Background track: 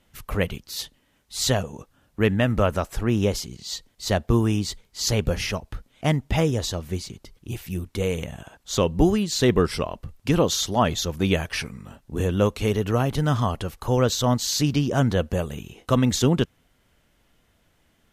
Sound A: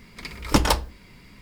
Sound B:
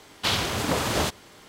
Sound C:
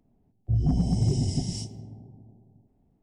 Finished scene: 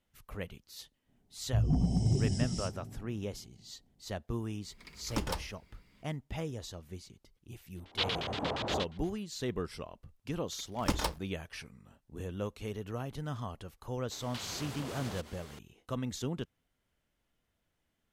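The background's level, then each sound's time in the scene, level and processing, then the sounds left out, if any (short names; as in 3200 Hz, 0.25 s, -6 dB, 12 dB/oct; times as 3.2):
background track -16.5 dB
1.04 add C -4.5 dB, fades 0.05 s
4.62 add A -16 dB
7.74 add B -10.5 dB, fades 0.10 s + LFO low-pass square 8.5 Hz 760–3600 Hz
10.34 add A -11.5 dB + crossover distortion -34 dBFS
14.11 add B -3 dB + compressor 8:1, threshold -37 dBFS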